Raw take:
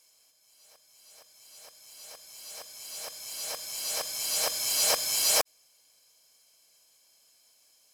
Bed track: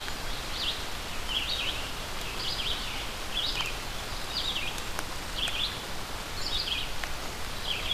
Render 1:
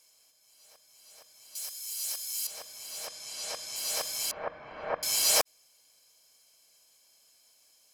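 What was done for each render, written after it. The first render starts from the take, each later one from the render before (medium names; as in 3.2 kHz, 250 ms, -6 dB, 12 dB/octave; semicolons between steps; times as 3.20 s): 1.55–2.47 s: tilt EQ +4.5 dB/octave; 3.07–3.76 s: low-pass 9.1 kHz; 4.31–5.03 s: low-pass 1.7 kHz 24 dB/octave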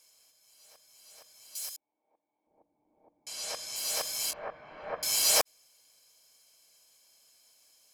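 1.76–3.27 s: cascade formant filter u; 4.30–4.95 s: detune thickener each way 24 cents -> 37 cents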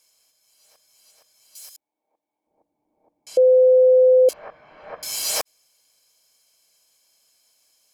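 1.11–1.75 s: gain -3.5 dB; 3.37–4.29 s: bleep 511 Hz -10 dBFS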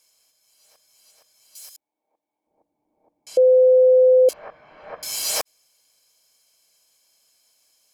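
no audible change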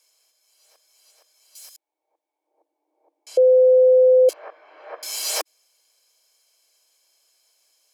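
steep high-pass 310 Hz 72 dB/octave; treble shelf 8.7 kHz -3.5 dB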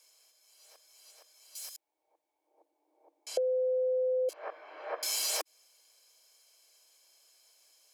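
peak limiter -15 dBFS, peak gain reduction 5.5 dB; compression 6:1, threshold -29 dBFS, peak gain reduction 11 dB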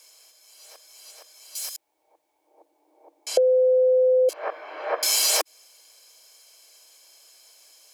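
trim +11 dB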